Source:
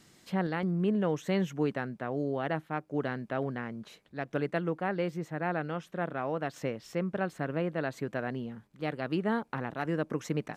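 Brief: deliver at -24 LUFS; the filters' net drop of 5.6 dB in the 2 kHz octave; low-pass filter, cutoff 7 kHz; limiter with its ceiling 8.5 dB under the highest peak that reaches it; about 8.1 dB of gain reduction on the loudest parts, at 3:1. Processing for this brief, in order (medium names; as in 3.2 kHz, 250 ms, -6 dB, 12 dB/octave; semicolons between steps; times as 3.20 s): low-pass 7 kHz; peaking EQ 2 kHz -7.5 dB; compression 3:1, threshold -36 dBFS; trim +19 dB; peak limiter -13.5 dBFS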